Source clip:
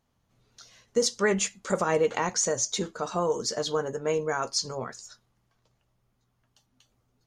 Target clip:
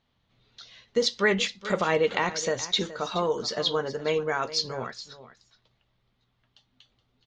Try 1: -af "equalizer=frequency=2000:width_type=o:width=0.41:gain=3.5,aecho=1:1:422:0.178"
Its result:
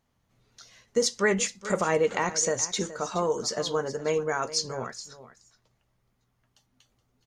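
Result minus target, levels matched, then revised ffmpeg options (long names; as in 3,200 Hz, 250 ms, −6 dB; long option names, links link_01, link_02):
4,000 Hz band −4.5 dB
-af "lowpass=frequency=3700:width_type=q:width=3,equalizer=frequency=2000:width_type=o:width=0.41:gain=3.5,aecho=1:1:422:0.178"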